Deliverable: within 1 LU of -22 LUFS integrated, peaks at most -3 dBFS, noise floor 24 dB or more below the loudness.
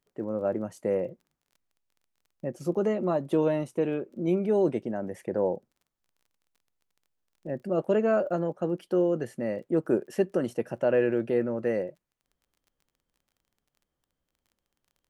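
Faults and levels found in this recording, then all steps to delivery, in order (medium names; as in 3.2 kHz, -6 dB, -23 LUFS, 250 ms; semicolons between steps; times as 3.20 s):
tick rate 22 per s; loudness -28.5 LUFS; peak level -12.5 dBFS; loudness target -22.0 LUFS
-> de-click; trim +6.5 dB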